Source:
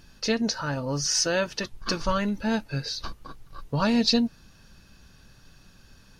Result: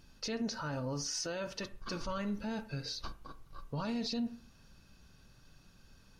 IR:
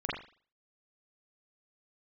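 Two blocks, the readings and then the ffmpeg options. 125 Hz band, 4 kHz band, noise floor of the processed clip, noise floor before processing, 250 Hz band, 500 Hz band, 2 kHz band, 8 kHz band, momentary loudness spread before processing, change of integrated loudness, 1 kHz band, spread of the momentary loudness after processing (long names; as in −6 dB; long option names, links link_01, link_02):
−10.0 dB, −13.0 dB, −62 dBFS, −55 dBFS, −11.5 dB, −12.0 dB, −13.5 dB, −12.5 dB, 10 LU, −12.0 dB, −11.5 dB, 11 LU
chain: -filter_complex "[0:a]bandreject=frequency=1700:width=13,asplit=2[link_01][link_02];[1:a]atrim=start_sample=2205,lowpass=2200[link_03];[link_02][link_03]afir=irnorm=-1:irlink=0,volume=-17.5dB[link_04];[link_01][link_04]amix=inputs=2:normalize=0,alimiter=limit=-20.5dB:level=0:latency=1:release=35,volume=-8dB"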